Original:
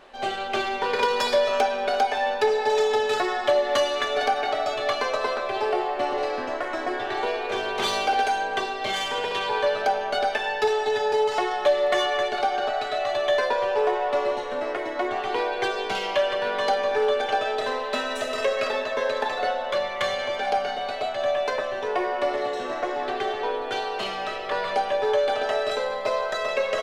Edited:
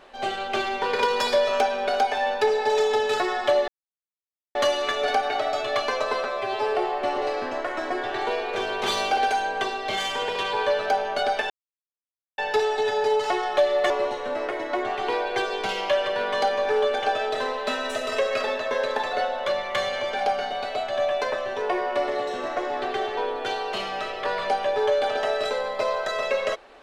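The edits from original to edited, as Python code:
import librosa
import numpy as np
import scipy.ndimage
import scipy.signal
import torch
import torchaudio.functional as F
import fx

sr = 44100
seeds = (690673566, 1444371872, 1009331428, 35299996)

y = fx.edit(x, sr, fx.insert_silence(at_s=3.68, length_s=0.87),
    fx.stretch_span(start_s=5.37, length_s=0.34, factor=1.5),
    fx.insert_silence(at_s=10.46, length_s=0.88),
    fx.cut(start_s=11.98, length_s=2.18), tone=tone)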